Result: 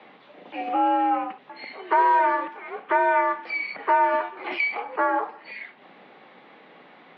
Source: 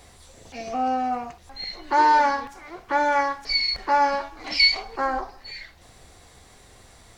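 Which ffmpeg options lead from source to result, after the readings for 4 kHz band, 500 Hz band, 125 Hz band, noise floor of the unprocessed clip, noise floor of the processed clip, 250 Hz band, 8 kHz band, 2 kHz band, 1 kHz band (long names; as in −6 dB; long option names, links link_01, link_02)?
−19.0 dB, +2.0 dB, can't be measured, −52 dBFS, −52 dBFS, +1.0 dB, below −35 dB, −0.5 dB, +0.5 dB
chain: -filter_complex "[0:a]highpass=frequency=150:width_type=q:width=0.5412,highpass=frequency=150:width_type=q:width=1.307,lowpass=frequency=3100:width_type=q:width=0.5176,lowpass=frequency=3100:width_type=q:width=0.7071,lowpass=frequency=3100:width_type=q:width=1.932,afreqshift=60,acrossover=split=890|2500[link_01][link_02][link_03];[link_01]acompressor=threshold=-26dB:ratio=4[link_04];[link_02]acompressor=threshold=-28dB:ratio=4[link_05];[link_03]acompressor=threshold=-49dB:ratio=4[link_06];[link_04][link_05][link_06]amix=inputs=3:normalize=0,volume=4.5dB"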